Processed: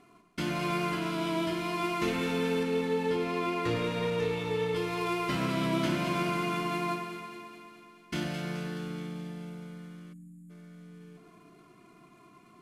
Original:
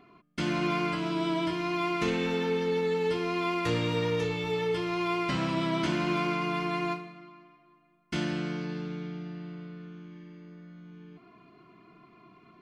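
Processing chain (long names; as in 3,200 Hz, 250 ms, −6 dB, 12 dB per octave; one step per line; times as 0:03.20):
variable-slope delta modulation 64 kbit/s
0:02.63–0:04.76: high-shelf EQ 5,600 Hz −9 dB
delay that swaps between a low-pass and a high-pass 107 ms, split 1,300 Hz, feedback 80%, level −6 dB
0:10.13–0:10.50: gain on a spectral selection 310–6,700 Hz −30 dB
level −2 dB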